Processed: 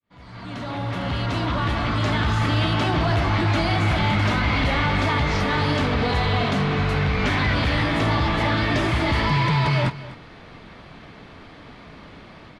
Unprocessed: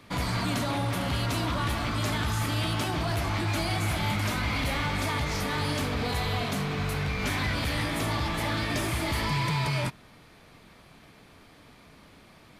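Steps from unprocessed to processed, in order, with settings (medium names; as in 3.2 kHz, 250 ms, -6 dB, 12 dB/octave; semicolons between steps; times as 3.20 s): fade-in on the opening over 2.51 s; low-pass 3.7 kHz 12 dB/octave; band-stop 2.4 kHz, Q 23; in parallel at -0.5 dB: peak limiter -28 dBFS, peak gain reduction 10 dB; on the sum: level rider gain up to 5 dB; on a send: delay 249 ms -17 dB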